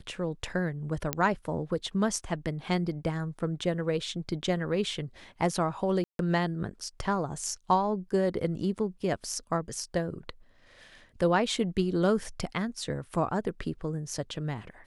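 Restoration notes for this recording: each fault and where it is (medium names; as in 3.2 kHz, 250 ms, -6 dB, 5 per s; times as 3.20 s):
1.13 s: pop -10 dBFS
6.04–6.19 s: dropout 152 ms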